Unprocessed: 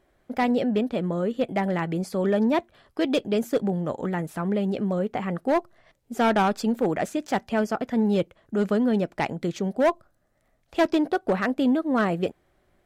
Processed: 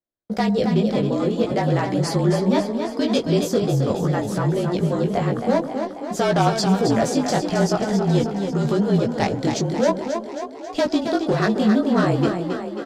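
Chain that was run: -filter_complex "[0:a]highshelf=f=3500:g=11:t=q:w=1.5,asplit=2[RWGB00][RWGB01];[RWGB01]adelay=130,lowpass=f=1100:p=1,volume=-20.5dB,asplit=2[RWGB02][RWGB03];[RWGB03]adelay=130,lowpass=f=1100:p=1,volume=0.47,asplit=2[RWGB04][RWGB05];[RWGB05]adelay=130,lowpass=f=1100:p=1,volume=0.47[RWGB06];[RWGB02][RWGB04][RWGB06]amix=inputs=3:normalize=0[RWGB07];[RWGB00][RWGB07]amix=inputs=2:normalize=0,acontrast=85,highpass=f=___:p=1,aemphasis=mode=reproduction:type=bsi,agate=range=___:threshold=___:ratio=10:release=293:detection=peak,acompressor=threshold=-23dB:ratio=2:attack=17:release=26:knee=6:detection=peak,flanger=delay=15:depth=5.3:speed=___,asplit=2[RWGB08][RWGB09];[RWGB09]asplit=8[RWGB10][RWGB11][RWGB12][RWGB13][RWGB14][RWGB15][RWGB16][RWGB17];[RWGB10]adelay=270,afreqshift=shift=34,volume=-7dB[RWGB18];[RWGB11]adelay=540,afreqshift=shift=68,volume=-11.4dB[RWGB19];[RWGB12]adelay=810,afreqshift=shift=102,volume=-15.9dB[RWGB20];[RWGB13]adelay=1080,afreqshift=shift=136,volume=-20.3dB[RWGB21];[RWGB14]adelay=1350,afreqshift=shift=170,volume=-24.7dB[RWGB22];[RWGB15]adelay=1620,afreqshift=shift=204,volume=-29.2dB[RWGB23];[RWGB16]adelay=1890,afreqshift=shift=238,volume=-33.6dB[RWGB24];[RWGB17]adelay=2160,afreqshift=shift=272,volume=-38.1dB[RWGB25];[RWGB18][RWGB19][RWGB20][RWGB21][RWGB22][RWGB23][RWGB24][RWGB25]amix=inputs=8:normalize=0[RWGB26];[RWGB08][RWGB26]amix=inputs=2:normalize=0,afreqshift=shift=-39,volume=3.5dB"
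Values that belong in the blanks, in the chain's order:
350, -36dB, -47dB, 0.48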